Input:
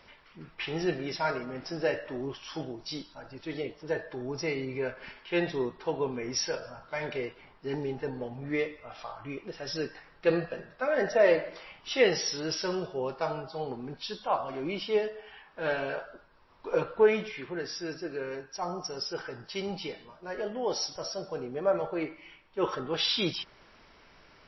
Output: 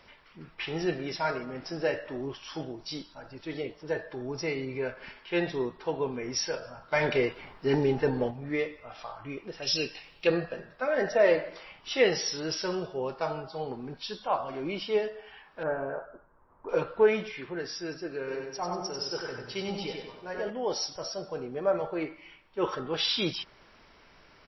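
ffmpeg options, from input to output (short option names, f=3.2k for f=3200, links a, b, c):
-filter_complex "[0:a]asettb=1/sr,asplit=3[a][b][c];[a]atrim=end=9.624[d];[b]atrim=start=9.62:end=10.27,asetpts=PTS-STARTPTS,afade=t=in:d=0.004:c=qsin,afade=t=out:st=0.646:d=0.004:c=qsin,highshelf=f=2.1k:t=q:w=3:g=8[e];[c]atrim=start=10.266[f];[d][e]acrossfade=d=0.004:c1=hsin:c2=qsin[g];[g][f]acrossfade=d=0.004:c1=qsin:c2=hsin,asettb=1/sr,asplit=3[h][i][j];[h]atrim=end=15.634[k];[i]atrim=start=15.63:end=16.69,asetpts=PTS-STARTPTS,afade=t=in:d=0.004:c=qsin,afade=t=out:st=1.056:d=0.004:c=qsin,lowpass=f=1.4k:w=0.5412,lowpass=f=1.4k:w=1.3066[l];[j]atrim=start=16.686[m];[k][l]acrossfade=d=0.004:c1=hsin:c2=qsin[n];[n][m]acrossfade=d=0.004:c1=qsin:c2=hsin,asplit=3[o][p][q];[o]afade=t=out:st=18.27:d=0.02[r];[p]aecho=1:1:95|190|285|380|475:0.631|0.271|0.117|0.0502|0.0216,afade=t=in:st=18.27:d=0.02,afade=t=out:st=20.49:d=0.02[s];[q]afade=t=in:st=20.49:d=0.02[t];[r][s][t]amix=inputs=3:normalize=0,asplit=3[u][v][w];[u]atrim=end=6.922[x];[v]atrim=start=6.918:end=8.312,asetpts=PTS-STARTPTS,volume=8dB[y];[w]atrim=start=8.308[z];[x][y]acrossfade=d=0.004:c1=hsin:c2=hsin[aa];[aa][z]acrossfade=d=0.004:c1=hsin:c2=hsin"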